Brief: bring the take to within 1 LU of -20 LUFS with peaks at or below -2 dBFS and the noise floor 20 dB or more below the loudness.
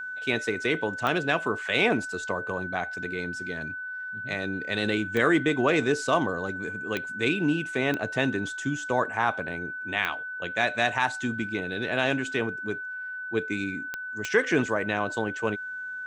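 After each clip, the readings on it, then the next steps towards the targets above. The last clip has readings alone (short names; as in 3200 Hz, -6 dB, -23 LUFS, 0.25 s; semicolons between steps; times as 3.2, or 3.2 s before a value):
clicks 7; steady tone 1500 Hz; tone level -33 dBFS; loudness -27.5 LUFS; peak -8.5 dBFS; loudness target -20.0 LUFS
-> de-click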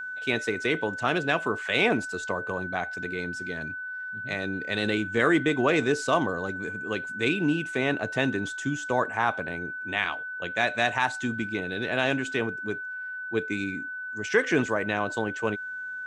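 clicks 0; steady tone 1500 Hz; tone level -33 dBFS
-> notch 1500 Hz, Q 30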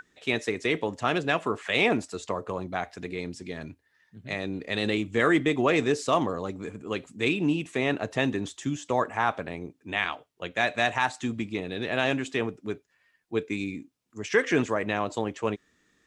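steady tone none; loudness -28.0 LUFS; peak -8.0 dBFS; loudness target -20.0 LUFS
-> gain +8 dB; limiter -2 dBFS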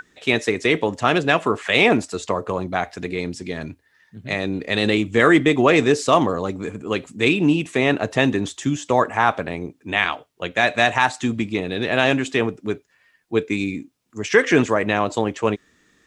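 loudness -20.0 LUFS; peak -2.0 dBFS; noise floor -62 dBFS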